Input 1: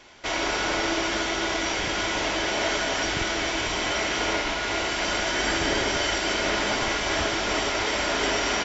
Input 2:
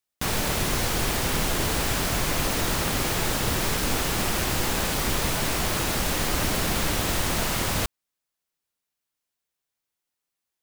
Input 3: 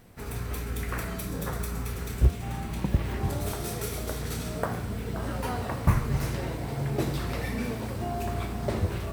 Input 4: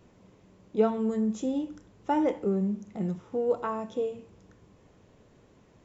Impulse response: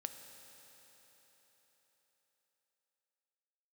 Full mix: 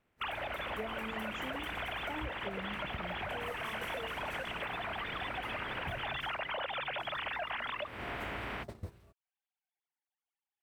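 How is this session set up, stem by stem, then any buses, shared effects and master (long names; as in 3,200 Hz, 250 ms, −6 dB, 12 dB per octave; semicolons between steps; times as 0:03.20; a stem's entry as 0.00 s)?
−10.5 dB, 0.00 s, no send, ceiling on every frequency bin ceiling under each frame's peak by 14 dB; low-pass filter 2,500 Hz 24 dB per octave
+0.5 dB, 0.00 s, no send, three sine waves on the formant tracks; automatic ducking −11 dB, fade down 0.40 s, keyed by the fourth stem
−13.5 dB, 0.00 s, no send, no processing
−10.5 dB, 0.00 s, no send, no processing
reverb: not used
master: noise gate −39 dBFS, range −15 dB; downward compressor 10 to 1, threshold −35 dBFS, peak gain reduction 16.5 dB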